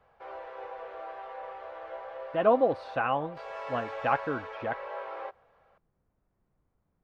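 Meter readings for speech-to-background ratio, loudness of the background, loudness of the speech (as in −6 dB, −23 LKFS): 11.5 dB, −41.0 LKFS, −29.5 LKFS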